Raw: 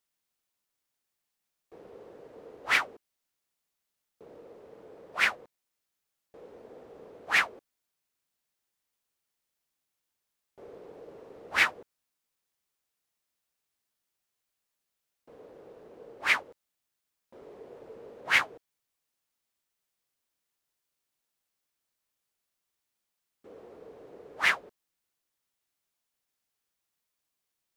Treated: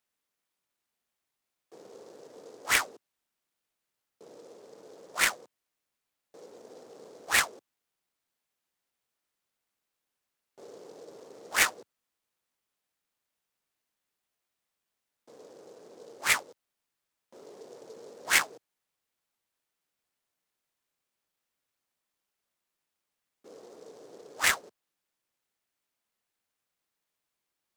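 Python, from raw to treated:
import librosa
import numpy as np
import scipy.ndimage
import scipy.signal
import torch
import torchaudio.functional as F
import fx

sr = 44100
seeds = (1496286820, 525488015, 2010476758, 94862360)

y = scipy.signal.sosfilt(scipy.signal.bessel(8, 170.0, 'highpass', norm='mag', fs=sr, output='sos'), x)
y = fx.noise_mod_delay(y, sr, seeds[0], noise_hz=5100.0, depth_ms=0.051)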